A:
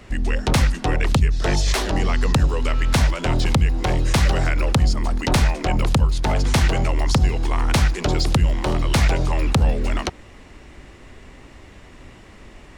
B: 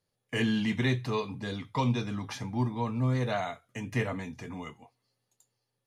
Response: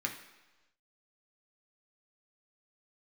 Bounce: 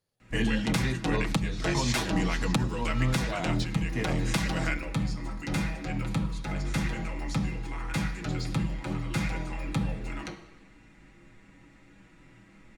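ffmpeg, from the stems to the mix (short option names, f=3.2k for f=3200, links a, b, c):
-filter_complex "[0:a]equalizer=f=210:w=3.4:g=8.5,aecho=1:1:6.2:0.63,adelay=200,volume=-8dB,asplit=2[a][b];[b]volume=-8dB[c];[1:a]volume=-1dB,asplit=2[d][e];[e]apad=whole_len=572446[f];[a][f]sidechaingate=range=-33dB:threshold=-50dB:ratio=16:detection=peak[g];[2:a]atrim=start_sample=2205[h];[c][h]afir=irnorm=-1:irlink=0[i];[g][d][i]amix=inputs=3:normalize=0,alimiter=limit=-16dB:level=0:latency=1:release=419"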